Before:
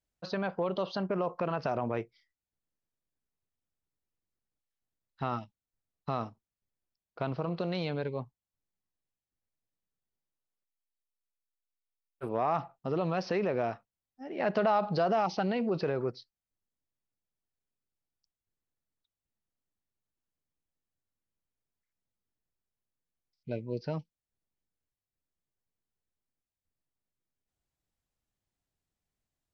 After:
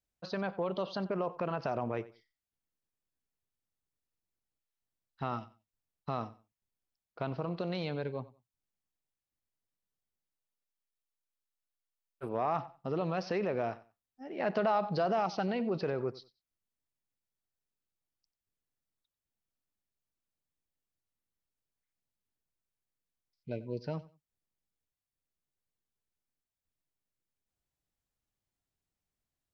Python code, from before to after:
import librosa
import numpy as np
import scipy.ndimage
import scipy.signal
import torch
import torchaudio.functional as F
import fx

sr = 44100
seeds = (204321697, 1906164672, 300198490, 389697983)

y = fx.echo_feedback(x, sr, ms=92, feedback_pct=21, wet_db=-18.5)
y = F.gain(torch.from_numpy(y), -2.5).numpy()